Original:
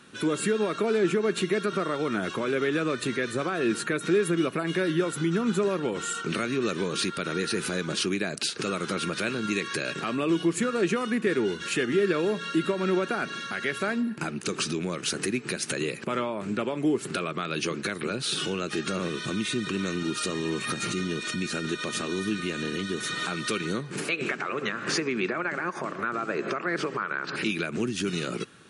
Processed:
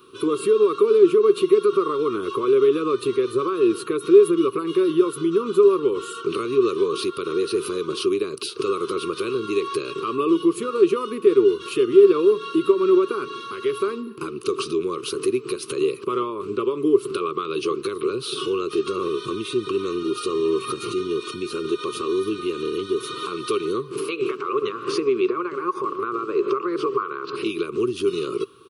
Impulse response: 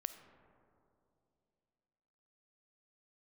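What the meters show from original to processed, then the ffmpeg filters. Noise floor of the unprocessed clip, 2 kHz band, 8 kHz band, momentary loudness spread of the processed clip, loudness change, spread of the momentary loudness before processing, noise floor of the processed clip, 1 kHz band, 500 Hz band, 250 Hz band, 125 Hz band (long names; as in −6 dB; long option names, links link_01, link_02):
−39 dBFS, −6.5 dB, −4.0 dB, 10 LU, +6.5 dB, 5 LU, −37 dBFS, +5.0 dB, +10.5 dB, +4.5 dB, −5.5 dB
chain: -af "firequalizer=gain_entry='entry(120,0);entry(190,-11);entry(400,14);entry(700,-24);entry(1100,12);entry(1700,-17);entry(2700,0);entry(4300,-1);entry(7200,-11);entry(13000,15)':delay=0.05:min_phase=1"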